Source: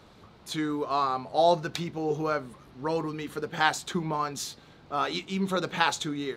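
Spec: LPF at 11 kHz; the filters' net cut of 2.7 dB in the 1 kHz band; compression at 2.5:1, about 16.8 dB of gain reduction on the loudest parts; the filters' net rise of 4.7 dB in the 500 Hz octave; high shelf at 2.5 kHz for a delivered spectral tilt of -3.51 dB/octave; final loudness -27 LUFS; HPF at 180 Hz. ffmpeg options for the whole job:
-af "highpass=180,lowpass=11000,equalizer=f=500:t=o:g=8,equalizer=f=1000:t=o:g=-8,highshelf=f=2500:g=4.5,acompressor=threshold=0.00891:ratio=2.5,volume=4.22"

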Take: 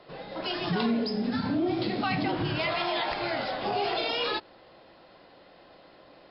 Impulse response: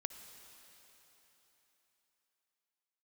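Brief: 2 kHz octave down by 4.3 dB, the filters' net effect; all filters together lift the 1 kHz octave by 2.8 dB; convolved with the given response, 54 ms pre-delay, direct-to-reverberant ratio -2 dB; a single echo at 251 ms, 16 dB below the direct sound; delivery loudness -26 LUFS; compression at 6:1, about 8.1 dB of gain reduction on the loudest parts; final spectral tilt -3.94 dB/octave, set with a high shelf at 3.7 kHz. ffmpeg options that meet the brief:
-filter_complex "[0:a]equalizer=f=1000:t=o:g=5.5,equalizer=f=2000:t=o:g=-5.5,highshelf=f=3700:g=-6.5,acompressor=threshold=0.0251:ratio=6,aecho=1:1:251:0.158,asplit=2[s0][s1];[1:a]atrim=start_sample=2205,adelay=54[s2];[s1][s2]afir=irnorm=-1:irlink=0,volume=1.5[s3];[s0][s3]amix=inputs=2:normalize=0,volume=2"

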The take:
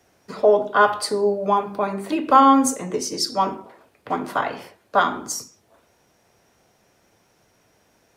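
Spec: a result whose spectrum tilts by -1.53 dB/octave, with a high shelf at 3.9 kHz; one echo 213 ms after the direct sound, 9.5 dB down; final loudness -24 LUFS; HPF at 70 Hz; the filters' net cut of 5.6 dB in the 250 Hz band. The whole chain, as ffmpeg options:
-af "highpass=70,equalizer=f=250:t=o:g=-6.5,highshelf=f=3900:g=8,aecho=1:1:213:0.335,volume=0.631"

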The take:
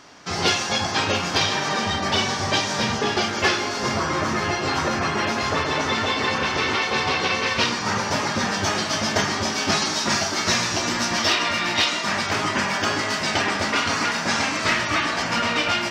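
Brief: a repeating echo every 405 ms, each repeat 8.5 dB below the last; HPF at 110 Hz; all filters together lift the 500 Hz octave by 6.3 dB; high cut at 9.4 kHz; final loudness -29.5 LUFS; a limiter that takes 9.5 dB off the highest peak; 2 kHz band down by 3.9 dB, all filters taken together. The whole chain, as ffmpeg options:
-af "highpass=110,lowpass=9400,equalizer=f=500:t=o:g=8.5,equalizer=f=2000:t=o:g=-5.5,alimiter=limit=0.211:level=0:latency=1,aecho=1:1:405|810|1215|1620:0.376|0.143|0.0543|0.0206,volume=0.447"

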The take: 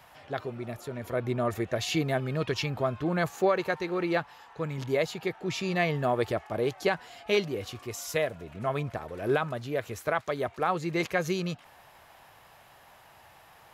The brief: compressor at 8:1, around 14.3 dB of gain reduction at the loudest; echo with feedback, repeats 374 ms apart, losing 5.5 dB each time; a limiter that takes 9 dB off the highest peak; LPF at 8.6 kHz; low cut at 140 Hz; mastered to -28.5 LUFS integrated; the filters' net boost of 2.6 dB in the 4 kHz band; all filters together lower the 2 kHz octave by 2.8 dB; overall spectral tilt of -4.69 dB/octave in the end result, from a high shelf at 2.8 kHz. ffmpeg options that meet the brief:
-af "highpass=140,lowpass=8600,equalizer=f=2000:t=o:g=-4,highshelf=f=2800:g=-3.5,equalizer=f=4000:t=o:g=7.5,acompressor=threshold=0.0178:ratio=8,alimiter=level_in=2:limit=0.0631:level=0:latency=1,volume=0.501,aecho=1:1:374|748|1122|1496|1870|2244|2618:0.531|0.281|0.149|0.079|0.0419|0.0222|0.0118,volume=3.98"

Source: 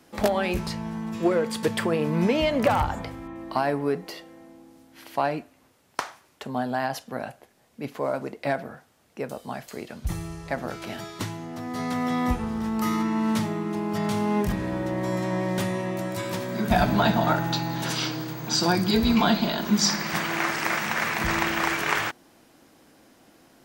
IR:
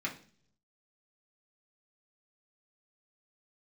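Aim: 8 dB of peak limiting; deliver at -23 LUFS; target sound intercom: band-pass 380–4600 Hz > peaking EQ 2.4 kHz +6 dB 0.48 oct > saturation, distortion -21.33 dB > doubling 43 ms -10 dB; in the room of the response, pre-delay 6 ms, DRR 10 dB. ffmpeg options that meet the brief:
-filter_complex "[0:a]alimiter=limit=0.188:level=0:latency=1,asplit=2[s0][s1];[1:a]atrim=start_sample=2205,adelay=6[s2];[s1][s2]afir=irnorm=-1:irlink=0,volume=0.2[s3];[s0][s3]amix=inputs=2:normalize=0,highpass=380,lowpass=4600,equalizer=f=2400:t=o:w=0.48:g=6,asoftclip=threshold=0.15,asplit=2[s4][s5];[s5]adelay=43,volume=0.316[s6];[s4][s6]amix=inputs=2:normalize=0,volume=1.88"

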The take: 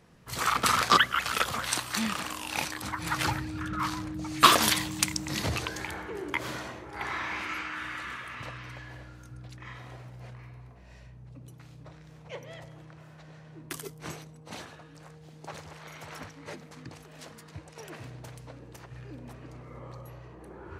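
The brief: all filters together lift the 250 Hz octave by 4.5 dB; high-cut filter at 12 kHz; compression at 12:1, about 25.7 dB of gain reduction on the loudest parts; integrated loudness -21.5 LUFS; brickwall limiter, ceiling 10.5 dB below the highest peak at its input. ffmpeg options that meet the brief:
-af "lowpass=12000,equalizer=f=250:t=o:g=6,acompressor=threshold=0.0126:ratio=12,volume=13.3,alimiter=limit=0.376:level=0:latency=1"

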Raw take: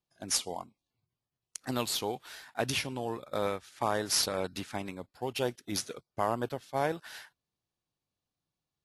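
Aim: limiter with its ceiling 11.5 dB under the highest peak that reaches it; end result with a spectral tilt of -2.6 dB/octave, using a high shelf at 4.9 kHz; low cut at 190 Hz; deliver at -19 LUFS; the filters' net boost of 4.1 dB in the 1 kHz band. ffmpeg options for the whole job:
-af "highpass=190,equalizer=f=1000:t=o:g=5.5,highshelf=f=4900:g=-3,volume=8.41,alimiter=limit=0.531:level=0:latency=1"

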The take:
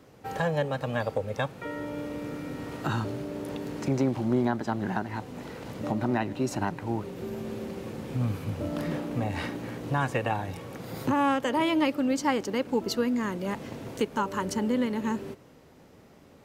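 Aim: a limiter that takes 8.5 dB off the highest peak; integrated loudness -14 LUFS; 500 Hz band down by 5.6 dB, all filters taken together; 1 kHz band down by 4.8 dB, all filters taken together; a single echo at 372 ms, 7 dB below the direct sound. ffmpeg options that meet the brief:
-af "equalizer=f=500:t=o:g=-6,equalizer=f=1000:t=o:g=-4,alimiter=level_in=1.12:limit=0.0631:level=0:latency=1,volume=0.891,aecho=1:1:372:0.447,volume=11.2"

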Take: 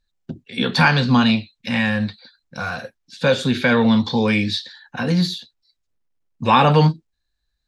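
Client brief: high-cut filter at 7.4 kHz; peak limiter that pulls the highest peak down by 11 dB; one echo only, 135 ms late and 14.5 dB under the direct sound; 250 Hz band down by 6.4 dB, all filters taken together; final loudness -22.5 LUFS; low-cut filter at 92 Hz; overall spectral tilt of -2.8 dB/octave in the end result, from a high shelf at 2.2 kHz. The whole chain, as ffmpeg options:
-af "highpass=92,lowpass=7400,equalizer=f=250:t=o:g=-8,highshelf=f=2200:g=6,alimiter=limit=0.266:level=0:latency=1,aecho=1:1:135:0.188"

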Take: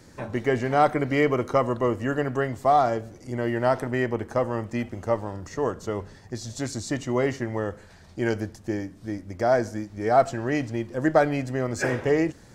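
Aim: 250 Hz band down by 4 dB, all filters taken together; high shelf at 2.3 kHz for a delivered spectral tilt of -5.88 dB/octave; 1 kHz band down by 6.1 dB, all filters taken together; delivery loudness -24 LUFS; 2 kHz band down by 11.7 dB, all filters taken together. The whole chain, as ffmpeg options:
-af "equalizer=f=250:t=o:g=-4.5,equalizer=f=1000:t=o:g=-6.5,equalizer=f=2000:t=o:g=-9,highshelf=f=2300:g=-7,volume=2"

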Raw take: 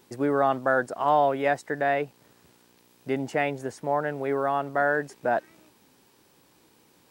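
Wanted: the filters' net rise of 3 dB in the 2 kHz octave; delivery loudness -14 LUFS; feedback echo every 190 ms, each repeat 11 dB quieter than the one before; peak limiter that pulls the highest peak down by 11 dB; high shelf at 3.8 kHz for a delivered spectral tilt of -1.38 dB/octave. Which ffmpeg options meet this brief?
-af "equalizer=f=2000:t=o:g=5.5,highshelf=f=3800:g=-7,alimiter=limit=0.0891:level=0:latency=1,aecho=1:1:190|380|570:0.282|0.0789|0.0221,volume=7.5"

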